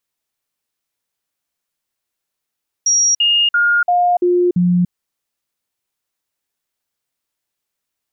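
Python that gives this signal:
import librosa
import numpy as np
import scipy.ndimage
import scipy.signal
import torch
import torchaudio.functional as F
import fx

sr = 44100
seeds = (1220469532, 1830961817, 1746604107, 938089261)

y = fx.stepped_sweep(sr, from_hz=5680.0, direction='down', per_octave=1, tones=6, dwell_s=0.29, gap_s=0.05, level_db=-10.5)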